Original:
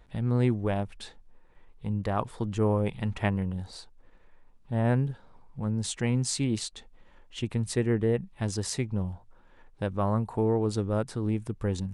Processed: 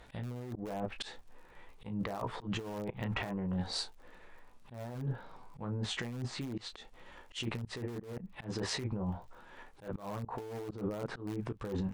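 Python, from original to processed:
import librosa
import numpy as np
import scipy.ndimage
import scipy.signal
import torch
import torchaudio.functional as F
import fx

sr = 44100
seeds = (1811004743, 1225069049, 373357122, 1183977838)

p1 = fx.env_lowpass_down(x, sr, base_hz=1200.0, full_db=-24.5)
p2 = fx.low_shelf(p1, sr, hz=270.0, db=-10.0)
p3 = p2 + fx.room_early_taps(p2, sr, ms=(16, 34), db=(-6.0, -9.5), dry=0)
p4 = fx.dmg_crackle(p3, sr, seeds[0], per_s=54.0, level_db=-62.0)
p5 = (np.mod(10.0 ** (25.5 / 20.0) * p4 + 1.0, 2.0) - 1.0) / 10.0 ** (25.5 / 20.0)
p6 = p4 + (p5 * librosa.db_to_amplitude(-11.0))
p7 = fx.over_compress(p6, sr, threshold_db=-37.0, ratio=-1.0)
y = fx.auto_swell(p7, sr, attack_ms=126.0)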